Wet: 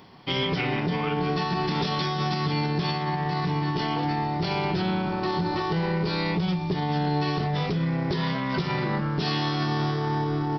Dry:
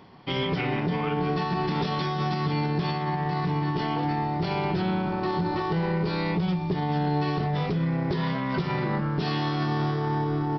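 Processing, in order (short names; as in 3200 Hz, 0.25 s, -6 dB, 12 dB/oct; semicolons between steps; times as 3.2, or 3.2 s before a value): high shelf 3900 Hz +10.5 dB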